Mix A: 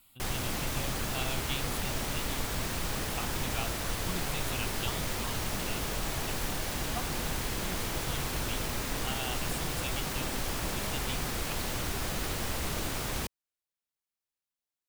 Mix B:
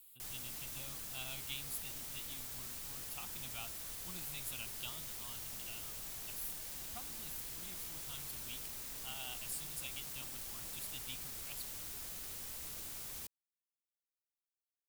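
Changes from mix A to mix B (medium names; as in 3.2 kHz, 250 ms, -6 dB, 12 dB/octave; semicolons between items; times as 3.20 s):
background -8.0 dB; master: add pre-emphasis filter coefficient 0.8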